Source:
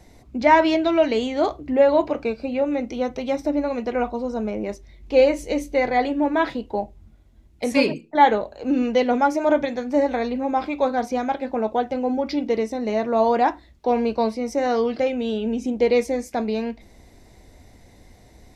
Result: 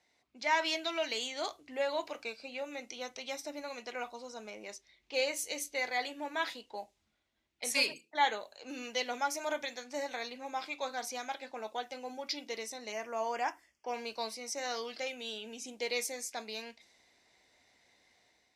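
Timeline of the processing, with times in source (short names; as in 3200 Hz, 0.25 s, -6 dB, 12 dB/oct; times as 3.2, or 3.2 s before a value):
12.92–13.94 Butterworth band-stop 3900 Hz, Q 2.2
whole clip: low-pass opened by the level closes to 2800 Hz, open at -19 dBFS; differentiator; AGC gain up to 6 dB; gain -2 dB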